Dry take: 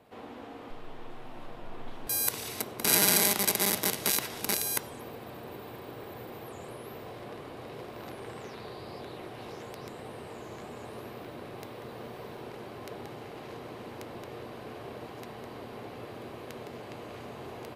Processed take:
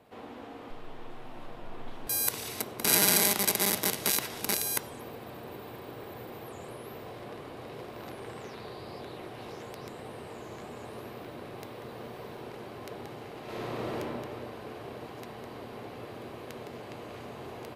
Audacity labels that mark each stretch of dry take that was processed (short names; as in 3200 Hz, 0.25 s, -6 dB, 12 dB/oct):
13.430000	13.970000	reverb throw, RT60 2.3 s, DRR -7.5 dB